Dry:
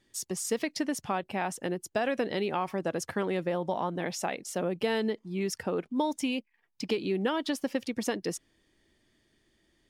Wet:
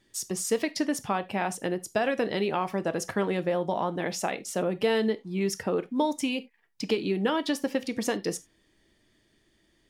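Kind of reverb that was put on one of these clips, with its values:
reverb whose tail is shaped and stops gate 110 ms falling, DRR 11.5 dB
level +2.5 dB

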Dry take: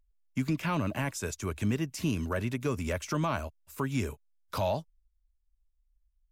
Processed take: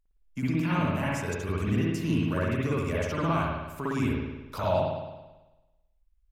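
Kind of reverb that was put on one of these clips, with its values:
spring reverb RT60 1.1 s, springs 55 ms, chirp 55 ms, DRR −7.5 dB
level −4.5 dB

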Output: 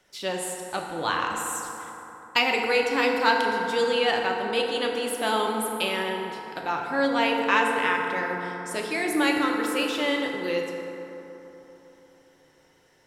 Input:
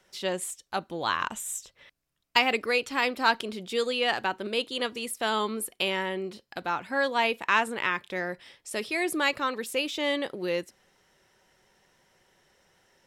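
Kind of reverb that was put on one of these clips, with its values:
feedback delay network reverb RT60 3.6 s, high-frequency decay 0.4×, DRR 0 dB

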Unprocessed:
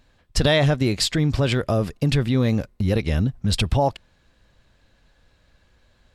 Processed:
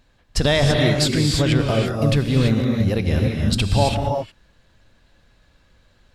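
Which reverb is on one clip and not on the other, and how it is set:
reverb whose tail is shaped and stops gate 360 ms rising, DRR 1 dB

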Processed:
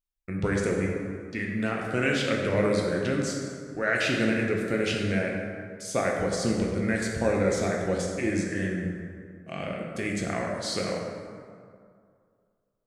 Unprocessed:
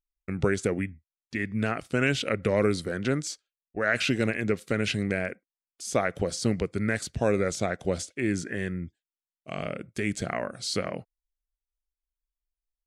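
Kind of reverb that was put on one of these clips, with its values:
dense smooth reverb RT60 2.2 s, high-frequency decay 0.5×, DRR −1.5 dB
level −3 dB

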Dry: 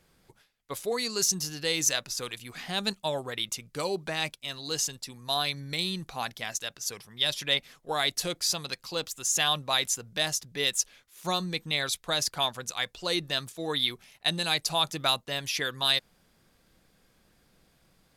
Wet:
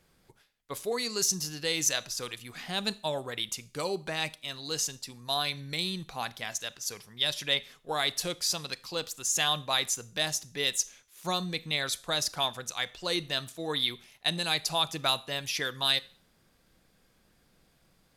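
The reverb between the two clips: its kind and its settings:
four-comb reverb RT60 0.43 s, combs from 26 ms, DRR 18 dB
level −1.5 dB

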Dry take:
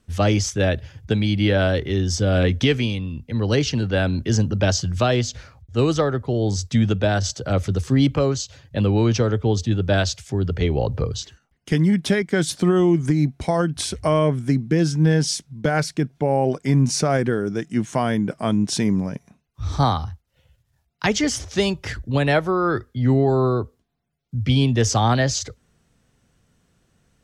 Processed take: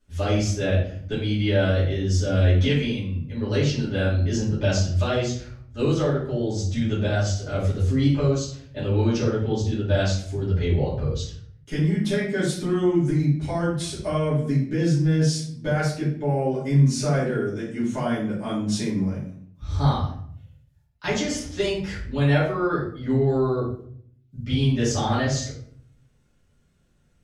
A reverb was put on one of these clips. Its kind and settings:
rectangular room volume 82 cubic metres, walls mixed, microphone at 2.6 metres
level −15.5 dB

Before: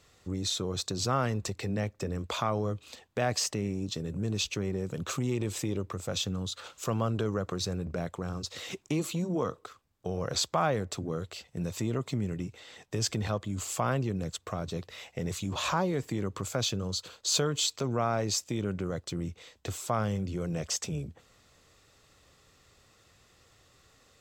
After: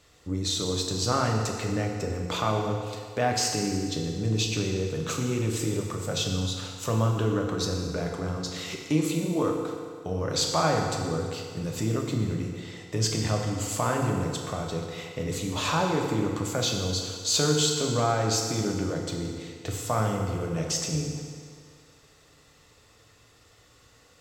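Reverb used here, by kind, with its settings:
feedback delay network reverb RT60 2.1 s, low-frequency decay 0.75×, high-frequency decay 0.85×, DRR 0 dB
level +1.5 dB

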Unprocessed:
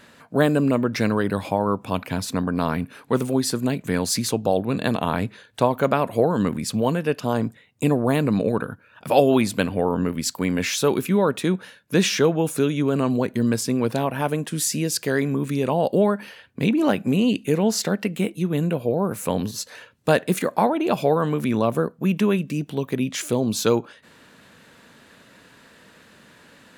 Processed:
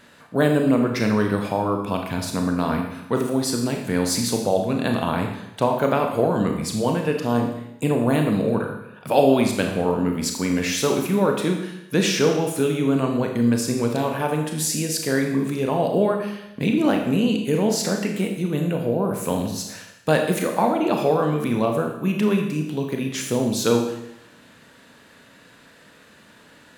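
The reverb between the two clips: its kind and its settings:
four-comb reverb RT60 0.86 s, combs from 26 ms, DRR 2.5 dB
level −1.5 dB

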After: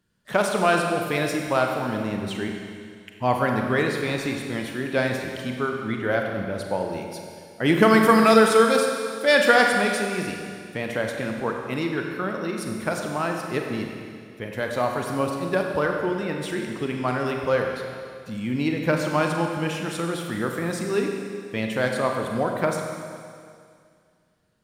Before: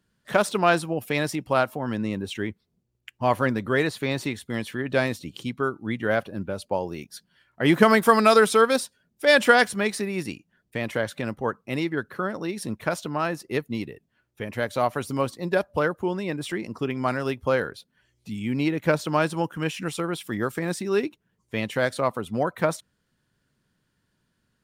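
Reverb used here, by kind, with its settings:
four-comb reverb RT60 2.2 s, combs from 32 ms, DRR 2 dB
level −1 dB

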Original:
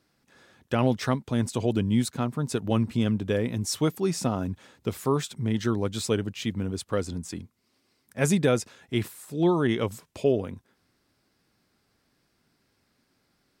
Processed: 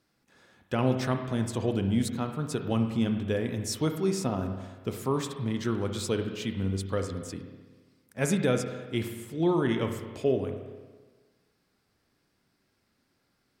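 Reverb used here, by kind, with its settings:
spring reverb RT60 1.4 s, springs 31/52 ms, chirp 65 ms, DRR 5.5 dB
level −3.5 dB

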